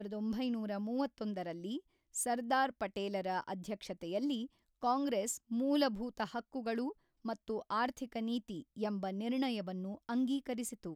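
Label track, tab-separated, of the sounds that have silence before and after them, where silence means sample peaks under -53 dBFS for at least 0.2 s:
2.140000	4.470000	sound
4.820000	6.930000	sound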